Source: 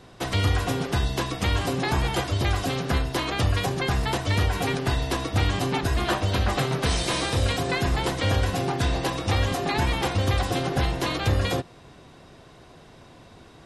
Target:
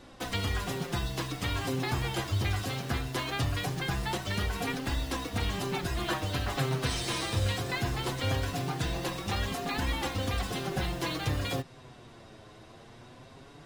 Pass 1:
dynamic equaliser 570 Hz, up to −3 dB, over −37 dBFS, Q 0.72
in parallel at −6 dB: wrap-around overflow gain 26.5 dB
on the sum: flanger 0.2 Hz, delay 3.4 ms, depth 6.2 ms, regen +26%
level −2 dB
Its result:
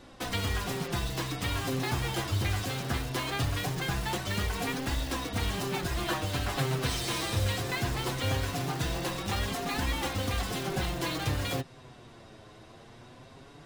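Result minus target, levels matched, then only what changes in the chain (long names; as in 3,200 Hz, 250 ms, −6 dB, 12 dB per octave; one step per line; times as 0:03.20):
wrap-around overflow: distortion −18 dB
change: wrap-around overflow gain 36 dB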